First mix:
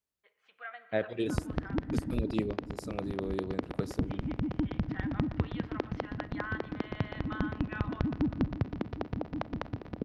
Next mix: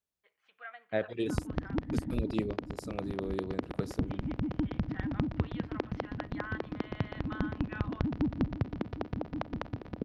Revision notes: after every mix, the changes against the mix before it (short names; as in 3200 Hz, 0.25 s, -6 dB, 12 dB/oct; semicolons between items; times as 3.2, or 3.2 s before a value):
reverb: off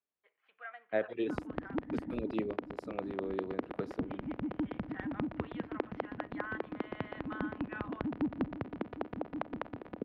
master: add three-band isolator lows -14 dB, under 220 Hz, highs -20 dB, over 3200 Hz